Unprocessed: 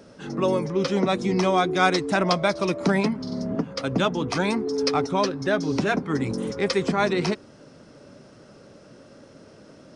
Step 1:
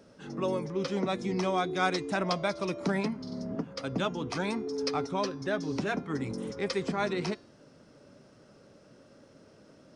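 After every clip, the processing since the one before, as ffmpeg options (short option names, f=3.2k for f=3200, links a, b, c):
-af "bandreject=f=346.7:t=h:w=4,bandreject=f=693.4:t=h:w=4,bandreject=f=1.0401k:t=h:w=4,bandreject=f=1.3868k:t=h:w=4,bandreject=f=1.7335k:t=h:w=4,bandreject=f=2.0802k:t=h:w=4,bandreject=f=2.4269k:t=h:w=4,bandreject=f=2.7736k:t=h:w=4,bandreject=f=3.1203k:t=h:w=4,bandreject=f=3.467k:t=h:w=4,bandreject=f=3.8137k:t=h:w=4,bandreject=f=4.1604k:t=h:w=4,bandreject=f=4.5071k:t=h:w=4,bandreject=f=4.8538k:t=h:w=4,bandreject=f=5.2005k:t=h:w=4,bandreject=f=5.5472k:t=h:w=4,bandreject=f=5.8939k:t=h:w=4,bandreject=f=6.2406k:t=h:w=4,bandreject=f=6.5873k:t=h:w=4,bandreject=f=6.934k:t=h:w=4,volume=-8dB"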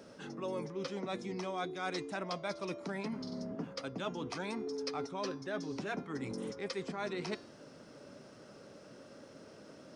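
-af "areverse,acompressor=threshold=-39dB:ratio=6,areverse,lowshelf=f=130:g=-9.5,volume=4dB"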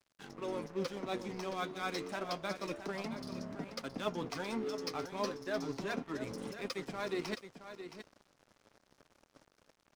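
-af "flanger=delay=0.8:depth=9.4:regen=52:speed=0.3:shape=sinusoidal,aeval=exprs='sgn(val(0))*max(abs(val(0))-0.00224,0)':c=same,aecho=1:1:670:0.299,volume=6dB"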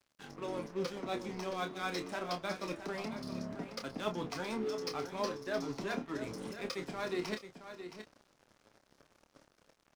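-filter_complex "[0:a]asplit=2[a][b];[b]adelay=28,volume=-8dB[c];[a][c]amix=inputs=2:normalize=0"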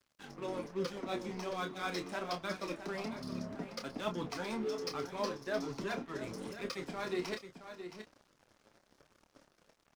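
-af "flanger=delay=0.6:depth=5.2:regen=-51:speed=1.2:shape=sinusoidal,volume=3.5dB"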